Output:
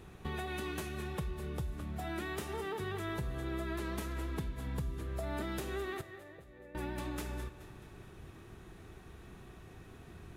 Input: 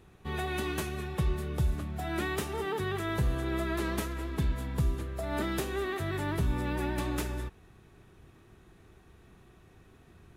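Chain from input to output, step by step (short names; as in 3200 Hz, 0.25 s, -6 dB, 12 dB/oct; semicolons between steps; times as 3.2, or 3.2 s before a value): compressor 6:1, threshold -41 dBFS, peak gain reduction 16.5 dB; 6.01–6.75 vocal tract filter e; split-band echo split 330 Hz, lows 90 ms, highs 0.213 s, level -14 dB; gain +4.5 dB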